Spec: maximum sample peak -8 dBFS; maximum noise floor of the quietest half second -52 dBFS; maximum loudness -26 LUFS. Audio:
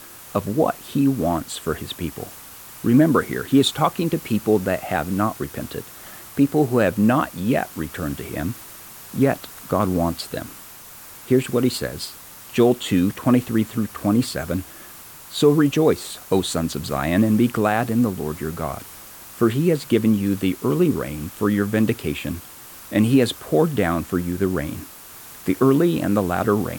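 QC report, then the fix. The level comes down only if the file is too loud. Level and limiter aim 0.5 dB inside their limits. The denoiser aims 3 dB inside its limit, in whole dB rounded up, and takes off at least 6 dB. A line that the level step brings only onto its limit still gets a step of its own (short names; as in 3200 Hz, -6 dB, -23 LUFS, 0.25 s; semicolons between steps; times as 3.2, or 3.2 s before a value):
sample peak -5.5 dBFS: fail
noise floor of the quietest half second -41 dBFS: fail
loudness -21.5 LUFS: fail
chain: denoiser 9 dB, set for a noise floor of -41 dBFS; gain -5 dB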